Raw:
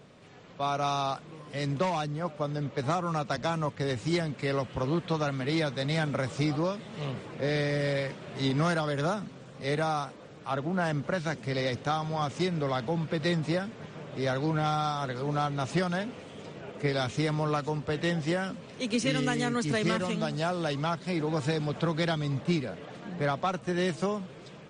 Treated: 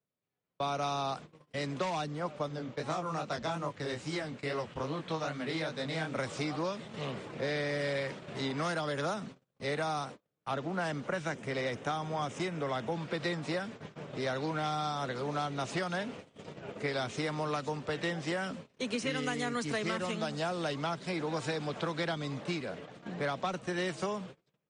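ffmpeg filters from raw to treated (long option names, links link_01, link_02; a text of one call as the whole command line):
ffmpeg -i in.wav -filter_complex "[0:a]asettb=1/sr,asplit=3[link_01][link_02][link_03];[link_01]atrim=end=2.484[link_04];[link_02]atrim=start=2.48:end=6.16,asetpts=PTS-STARTPTS,afade=type=in:duration=0.004:curve=qsin,afade=type=out:start_time=3.676:duration=0.004:curve=qsin,flanger=delay=19:depth=6.5:speed=2.4[link_05];[link_03]atrim=start=6.156[link_06];[link_04][link_05]acrossfade=duration=0.004:curve1=hsin:curve2=qsin[link_07];[link_07][link_06]acrossfade=duration=0.004:curve1=qsin:curve2=hsin,asettb=1/sr,asplit=3[link_08][link_09][link_10];[link_08]atrim=end=11.074[link_11];[link_09]atrim=start=11.07:end=12.92,asetpts=PTS-STARTPTS,afade=type=in:duration=0.004:curve=qsin,afade=type=out:start_time=1.846:duration=0.004:curve=qsin,equalizer=frequency=4400:width=3:gain=-10[link_12];[link_10]atrim=start=12.916[link_13];[link_11][link_12]acrossfade=duration=0.004:curve1=hsin:curve2=qsin[link_14];[link_14][link_13]acrossfade=duration=0.004:curve1=qsin:curve2=hsin,agate=range=-38dB:threshold=-42dB:ratio=16:detection=peak,acrossover=split=210|600|2200[link_15][link_16][link_17][link_18];[link_15]acompressor=threshold=-46dB:ratio=4[link_19];[link_16]acompressor=threshold=-37dB:ratio=4[link_20];[link_17]acompressor=threshold=-35dB:ratio=4[link_21];[link_18]acompressor=threshold=-41dB:ratio=4[link_22];[link_19][link_20][link_21][link_22]amix=inputs=4:normalize=0" out.wav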